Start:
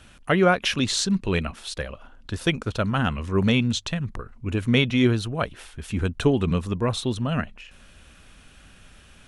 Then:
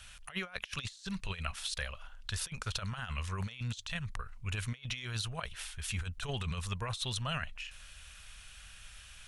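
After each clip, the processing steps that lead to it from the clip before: passive tone stack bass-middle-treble 10-0-10; negative-ratio compressor -37 dBFS, ratio -0.5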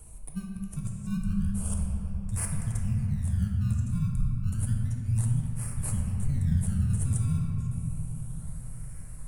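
elliptic band-stop 210–8700 Hz, stop band 40 dB; in parallel at -10 dB: decimation with a swept rate 24×, swing 100% 0.31 Hz; on the sum: reverb RT60 3.6 s, pre-delay 6 ms, DRR -0.5 dB; gain +7 dB

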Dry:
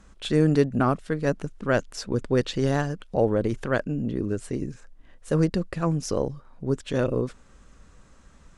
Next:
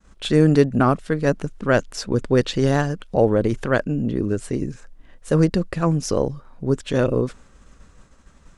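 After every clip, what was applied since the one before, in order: expander -47 dBFS; gain +5 dB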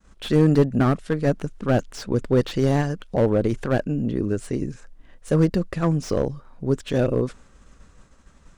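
slew limiter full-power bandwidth 120 Hz; gain -1.5 dB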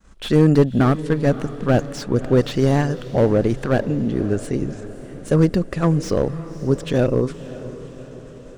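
diffused feedback echo 0.572 s, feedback 56%, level -15 dB; gain +3 dB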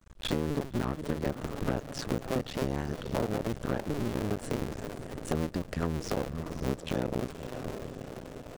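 cycle switcher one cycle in 2, muted; compressor 6:1, threshold -25 dBFS, peak gain reduction 14.5 dB; gain -2 dB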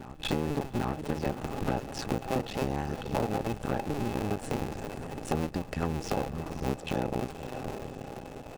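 small resonant body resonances 810/2600 Hz, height 12 dB, ringing for 50 ms; reverse echo 0.793 s -14 dB

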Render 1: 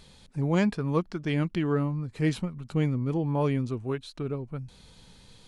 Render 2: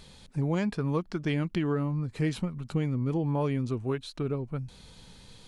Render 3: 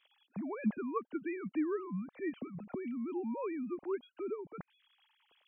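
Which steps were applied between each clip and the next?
compressor, threshold -26 dBFS, peak gain reduction 7.5 dB; gain +2 dB
sine-wave speech; gain -8.5 dB

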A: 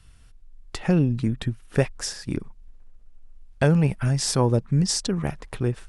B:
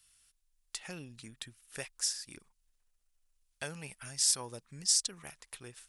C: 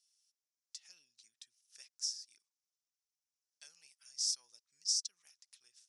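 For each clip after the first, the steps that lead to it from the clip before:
pre-emphasis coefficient 0.97
band-pass 5600 Hz, Q 3.8; gain -1.5 dB

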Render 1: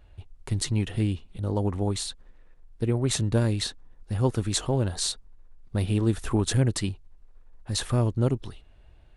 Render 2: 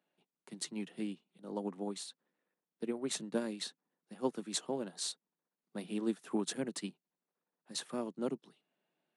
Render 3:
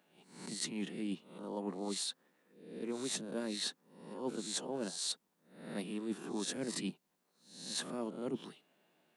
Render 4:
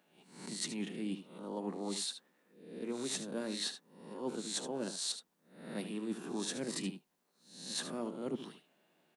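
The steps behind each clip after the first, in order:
steep high-pass 160 Hz 72 dB/oct; upward expander 1.5:1, over -42 dBFS; gain -7 dB
spectral swells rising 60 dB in 0.45 s; reverse; compressor 10:1, threshold -45 dBFS, peak gain reduction 18 dB; reverse; gain +9.5 dB
echo 75 ms -11 dB

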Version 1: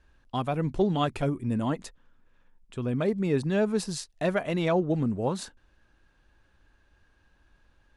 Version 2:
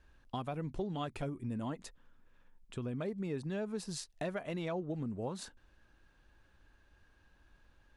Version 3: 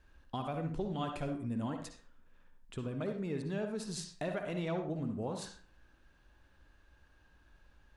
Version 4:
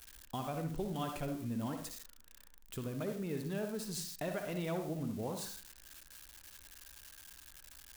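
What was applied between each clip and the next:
compressor 3:1, threshold -36 dBFS, peak gain reduction 12.5 dB; gain -2 dB
reverb RT60 0.40 s, pre-delay 47 ms, DRR 5 dB
switching spikes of -38.5 dBFS; gain -1.5 dB

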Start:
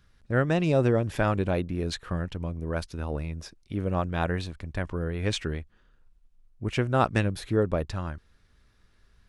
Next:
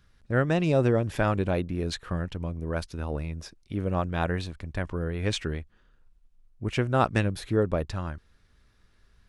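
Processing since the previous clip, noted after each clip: nothing audible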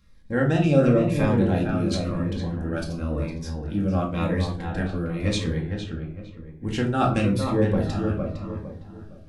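darkening echo 0.458 s, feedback 35%, low-pass 2300 Hz, level -5.5 dB; reverb RT60 0.45 s, pre-delay 4 ms, DRR -0.5 dB; cascading phaser falling 0.95 Hz

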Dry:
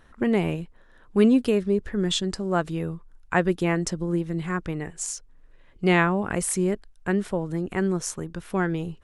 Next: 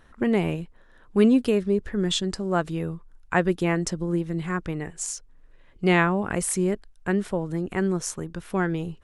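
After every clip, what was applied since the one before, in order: nothing audible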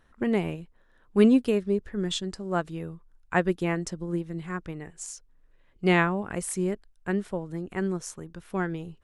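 upward expander 1.5:1, over -30 dBFS

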